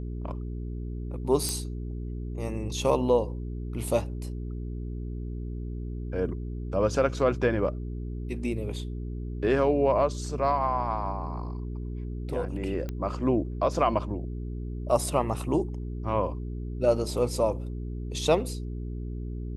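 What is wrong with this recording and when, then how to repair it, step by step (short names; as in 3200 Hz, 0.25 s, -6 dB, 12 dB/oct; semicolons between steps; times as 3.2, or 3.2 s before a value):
hum 60 Hz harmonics 7 -34 dBFS
1.49 pop -14 dBFS
12.89 pop -21 dBFS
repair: de-click; de-hum 60 Hz, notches 7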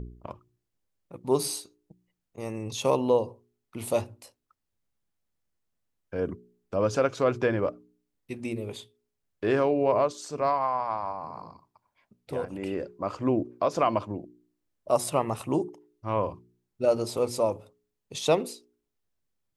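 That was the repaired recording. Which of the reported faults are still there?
none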